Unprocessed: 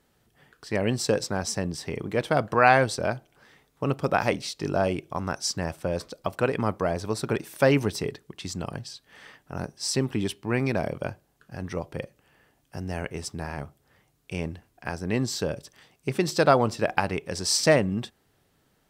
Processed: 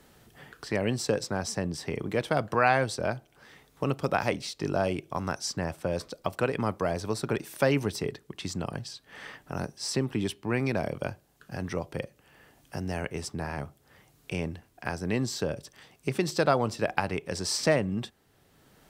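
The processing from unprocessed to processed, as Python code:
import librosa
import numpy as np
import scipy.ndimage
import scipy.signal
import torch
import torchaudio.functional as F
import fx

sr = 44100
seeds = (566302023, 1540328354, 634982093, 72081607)

y = fx.band_squash(x, sr, depth_pct=40)
y = F.gain(torch.from_numpy(y), -2.5).numpy()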